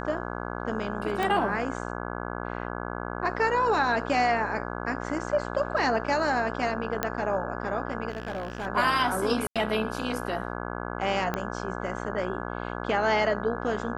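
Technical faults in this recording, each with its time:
buzz 60 Hz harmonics 28 -34 dBFS
1.23 pop -15 dBFS
7.03 pop -10 dBFS
8.09–8.67 clipped -28 dBFS
9.47–9.56 gap 86 ms
11.34 pop -14 dBFS

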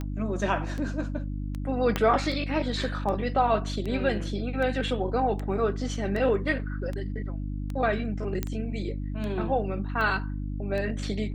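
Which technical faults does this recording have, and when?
hum 50 Hz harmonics 6 -32 dBFS
tick 78 rpm -22 dBFS
1.96 pop -11 dBFS
8.43 pop -14 dBFS

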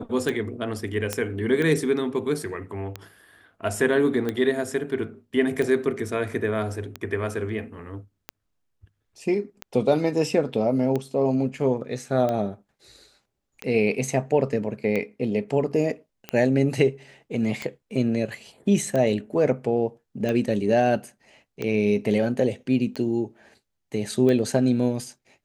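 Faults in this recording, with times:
tick 45 rpm
1.13 pop -10 dBFS

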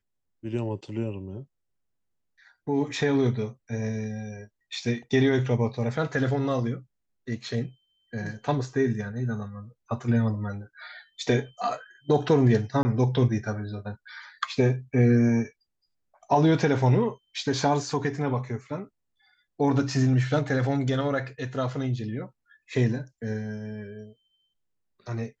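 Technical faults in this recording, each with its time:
12.83–12.85 gap 20 ms

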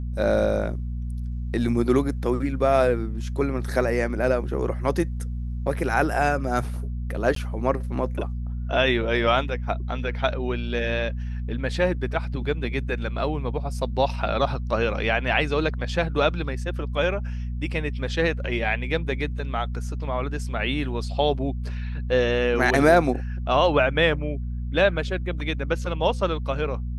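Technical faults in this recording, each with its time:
hum 60 Hz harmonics 4 -29 dBFS
7.35–7.36 gap 13 ms

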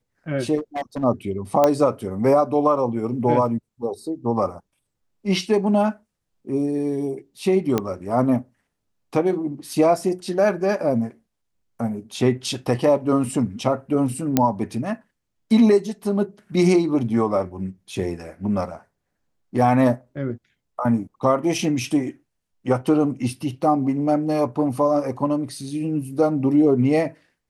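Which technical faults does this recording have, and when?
0.57–1.04 clipped -23 dBFS
1.64 pop -5 dBFS
7.78 pop -8 dBFS
14.37 pop -3 dBFS

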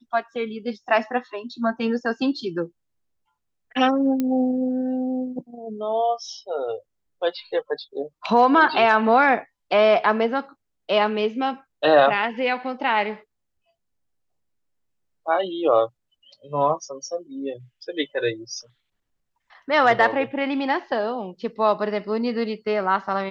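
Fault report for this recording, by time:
4.2 pop -12 dBFS

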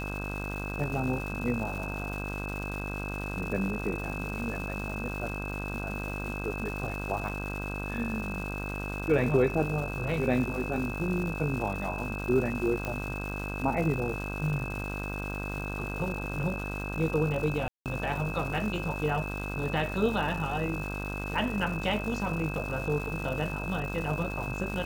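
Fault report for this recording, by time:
buzz 50 Hz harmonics 32 -36 dBFS
crackle 460/s -37 dBFS
tone 2600 Hz -38 dBFS
12.85 pop -19 dBFS
17.68–17.86 gap 0.178 s

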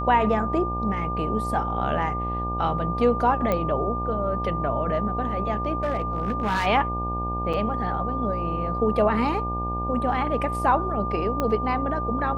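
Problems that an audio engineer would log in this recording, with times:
buzz 60 Hz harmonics 16 -30 dBFS
tone 1200 Hz -28 dBFS
3.52 pop -12 dBFS
5.83–6.67 clipped -20 dBFS
7.53–7.54 gap 5.7 ms
11.4 pop -12 dBFS

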